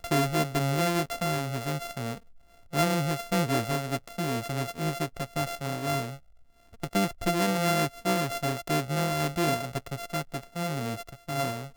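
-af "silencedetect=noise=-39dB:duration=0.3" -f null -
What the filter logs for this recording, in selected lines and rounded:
silence_start: 2.18
silence_end: 2.73 | silence_duration: 0.55
silence_start: 6.16
silence_end: 6.83 | silence_duration: 0.67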